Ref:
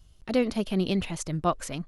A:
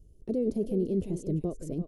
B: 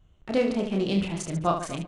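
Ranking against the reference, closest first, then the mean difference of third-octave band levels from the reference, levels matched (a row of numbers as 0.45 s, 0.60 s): B, A; 5.0 dB, 10.5 dB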